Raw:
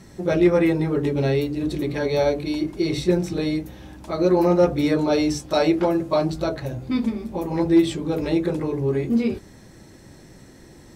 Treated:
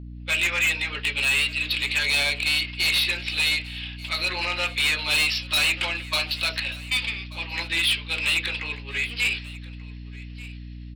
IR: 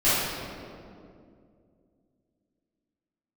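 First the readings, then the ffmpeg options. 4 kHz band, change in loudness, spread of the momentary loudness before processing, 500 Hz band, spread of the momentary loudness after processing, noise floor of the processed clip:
+13.5 dB, -1.0 dB, 9 LU, -19.5 dB, 18 LU, -38 dBFS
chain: -af "aresample=11025,aresample=44100,dynaudnorm=f=160:g=3:m=7dB,highpass=f=2.7k:t=q:w=4.6,asoftclip=type=tanh:threshold=-24.5dB,agate=range=-33dB:threshold=-36dB:ratio=3:detection=peak,aecho=1:1:1185:0.1,aeval=exprs='val(0)+0.00708*(sin(2*PI*60*n/s)+sin(2*PI*2*60*n/s)/2+sin(2*PI*3*60*n/s)/3+sin(2*PI*4*60*n/s)/4+sin(2*PI*5*60*n/s)/5)':c=same,volume=6.5dB"

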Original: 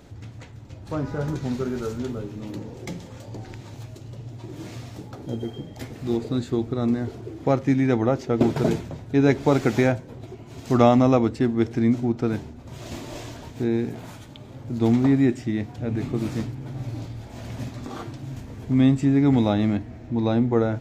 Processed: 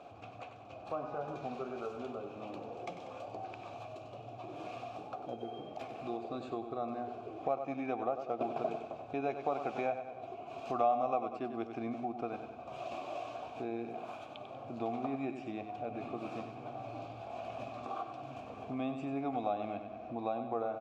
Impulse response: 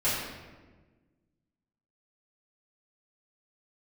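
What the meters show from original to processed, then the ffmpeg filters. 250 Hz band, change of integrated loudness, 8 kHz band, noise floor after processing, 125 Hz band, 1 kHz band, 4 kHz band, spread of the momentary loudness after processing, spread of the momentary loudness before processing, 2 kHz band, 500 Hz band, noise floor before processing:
-19.5 dB, -16.5 dB, n/a, -49 dBFS, -25.0 dB, -5.0 dB, -15.0 dB, 10 LU, 20 LU, -14.0 dB, -11.5 dB, -43 dBFS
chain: -filter_complex "[0:a]asplit=3[a][b][c];[a]bandpass=f=730:t=q:w=8,volume=0dB[d];[b]bandpass=f=1.09k:t=q:w=8,volume=-6dB[e];[c]bandpass=f=2.44k:t=q:w=8,volume=-9dB[f];[d][e][f]amix=inputs=3:normalize=0,aecho=1:1:95|190|285|380:0.316|0.13|0.0532|0.0218,acompressor=threshold=-54dB:ratio=2,volume=12dB"

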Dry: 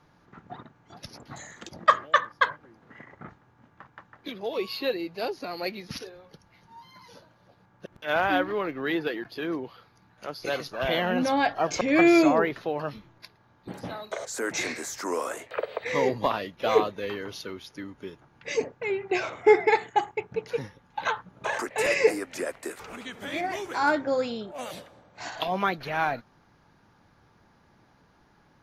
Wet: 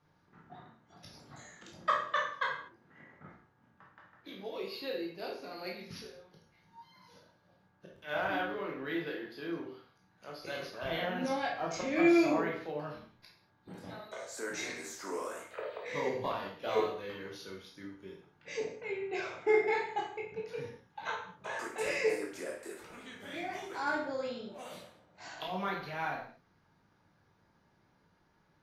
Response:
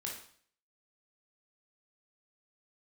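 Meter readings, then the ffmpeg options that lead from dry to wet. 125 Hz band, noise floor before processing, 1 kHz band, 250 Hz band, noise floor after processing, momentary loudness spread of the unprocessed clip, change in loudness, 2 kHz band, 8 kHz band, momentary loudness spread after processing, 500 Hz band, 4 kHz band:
-7.5 dB, -62 dBFS, -9.5 dB, -7.5 dB, -70 dBFS, 20 LU, -8.5 dB, -8.5 dB, -9.5 dB, 20 LU, -8.5 dB, -8.5 dB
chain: -filter_complex "[1:a]atrim=start_sample=2205,afade=t=out:st=0.3:d=0.01,atrim=end_sample=13671[a];[0:a][a]afir=irnorm=-1:irlink=0,volume=-8.5dB"

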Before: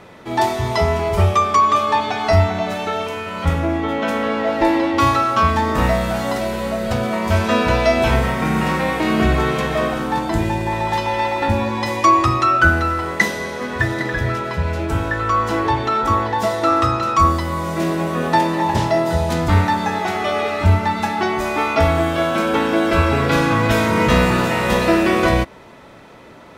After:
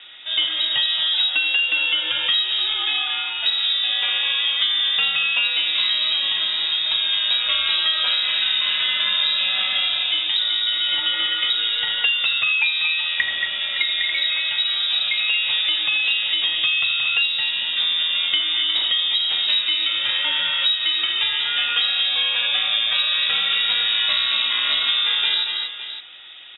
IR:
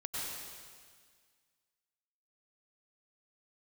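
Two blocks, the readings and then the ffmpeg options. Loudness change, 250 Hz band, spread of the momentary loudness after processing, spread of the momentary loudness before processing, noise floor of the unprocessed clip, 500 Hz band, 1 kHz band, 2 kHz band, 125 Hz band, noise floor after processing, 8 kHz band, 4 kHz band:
0.0 dB, under -30 dB, 2 LU, 7 LU, -41 dBFS, -26.5 dB, -18.5 dB, 0.0 dB, under -35 dB, -27 dBFS, under -40 dB, +15.5 dB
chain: -filter_complex "[0:a]asplit=2[a][b];[b]aecho=0:1:82|228|561:0.266|0.335|0.133[c];[a][c]amix=inputs=2:normalize=0,lowpass=f=3.3k:t=q:w=0.5098,lowpass=f=3.3k:t=q:w=0.6013,lowpass=f=3.3k:t=q:w=0.9,lowpass=f=3.3k:t=q:w=2.563,afreqshift=-3900,acompressor=threshold=-17dB:ratio=6"

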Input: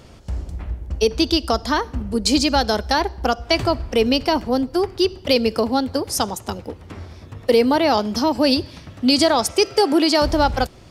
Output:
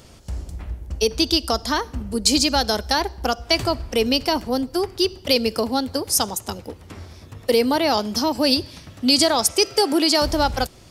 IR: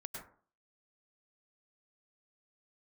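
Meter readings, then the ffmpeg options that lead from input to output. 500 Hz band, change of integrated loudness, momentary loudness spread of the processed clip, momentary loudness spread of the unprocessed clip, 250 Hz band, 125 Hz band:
-3.0 dB, -1.0 dB, 16 LU, 15 LU, -3.0 dB, -3.0 dB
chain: -af "highshelf=f=4.9k:g=11,volume=-3dB"

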